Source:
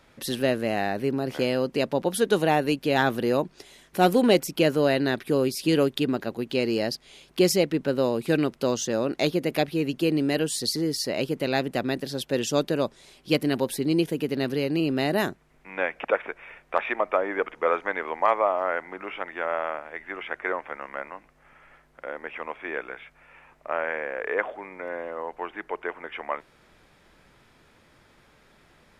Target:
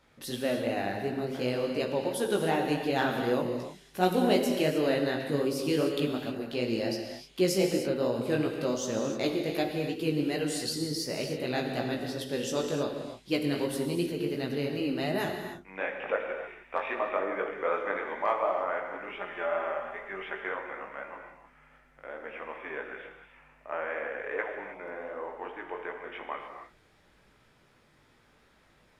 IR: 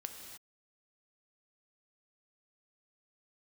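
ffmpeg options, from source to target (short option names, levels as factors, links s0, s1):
-filter_complex "[0:a]asettb=1/sr,asplit=3[s0][s1][s2];[s0]atrim=end=19.074[s3];[s1]atrim=start=19.07:end=20.42,asetpts=PTS-STARTPTS,afade=t=in:d=0.004:c=qsin,afade=t=out:st=1.346:d=0.004:c=qsin,aecho=1:1:5:0.68,atrim=end_sample=59535[s4];[s2]atrim=start=20.416[s5];[s3][s4]acrossfade=d=0.004:c1=hsin:c2=qsin[s6];[s6][s5]acrossfade=d=0.004:c1=qsin:c2=hsin,flanger=delay=16:depth=5:speed=2.7[s7];[1:a]atrim=start_sample=2205[s8];[s7][s8]afir=irnorm=-1:irlink=0"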